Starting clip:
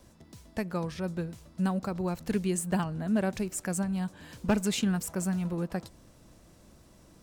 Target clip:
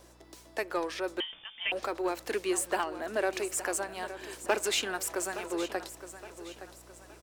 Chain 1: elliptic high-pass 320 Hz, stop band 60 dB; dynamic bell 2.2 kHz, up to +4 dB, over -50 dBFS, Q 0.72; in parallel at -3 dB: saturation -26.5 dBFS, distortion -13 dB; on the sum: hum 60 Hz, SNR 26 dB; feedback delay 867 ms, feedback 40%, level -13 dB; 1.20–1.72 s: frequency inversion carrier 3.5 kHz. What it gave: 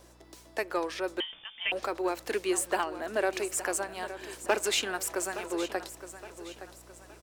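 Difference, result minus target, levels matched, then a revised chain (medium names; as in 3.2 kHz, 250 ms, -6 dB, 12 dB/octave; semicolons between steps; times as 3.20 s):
saturation: distortion -6 dB
elliptic high-pass 320 Hz, stop band 60 dB; dynamic bell 2.2 kHz, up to +4 dB, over -50 dBFS, Q 0.72; in parallel at -3 dB: saturation -34 dBFS, distortion -7 dB; on the sum: hum 60 Hz, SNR 26 dB; feedback delay 867 ms, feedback 40%, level -13 dB; 1.20–1.72 s: frequency inversion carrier 3.5 kHz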